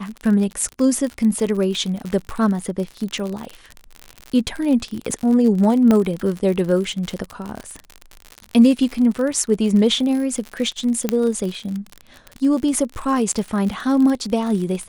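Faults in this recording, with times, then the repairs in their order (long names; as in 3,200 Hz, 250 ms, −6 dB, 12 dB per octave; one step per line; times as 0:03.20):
surface crackle 56 per second −24 dBFS
0:05.91: click −6 dBFS
0:11.09: click −5 dBFS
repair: click removal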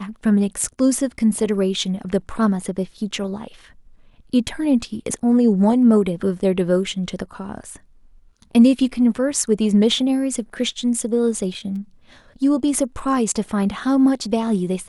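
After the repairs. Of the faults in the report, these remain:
none of them is left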